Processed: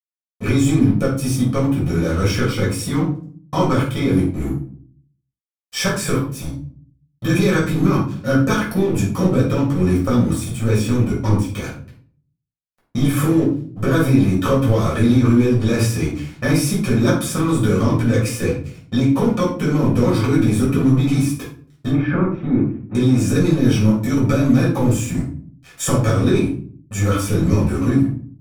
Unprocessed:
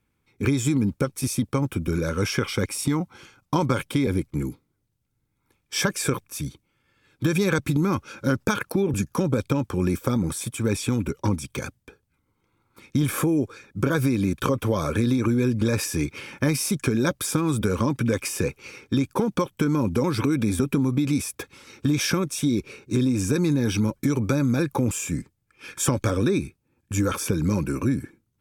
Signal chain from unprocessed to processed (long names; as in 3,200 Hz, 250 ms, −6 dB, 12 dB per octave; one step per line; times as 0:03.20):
dead-zone distortion −38 dBFS
0:21.89–0:22.95: low-pass filter 1,900 Hz 24 dB per octave
rectangular room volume 440 cubic metres, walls furnished, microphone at 6.2 metres
level −3.5 dB